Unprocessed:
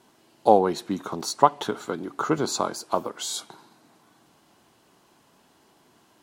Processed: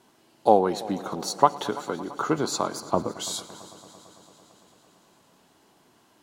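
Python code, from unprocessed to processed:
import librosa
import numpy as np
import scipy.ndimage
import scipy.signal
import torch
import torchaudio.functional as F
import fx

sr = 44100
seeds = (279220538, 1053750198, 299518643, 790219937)

y = fx.riaa(x, sr, side='playback', at=(2.8, 3.2))
y = fx.echo_heads(y, sr, ms=112, heads='all three', feedback_pct=70, wet_db=-23)
y = F.gain(torch.from_numpy(y), -1.0).numpy()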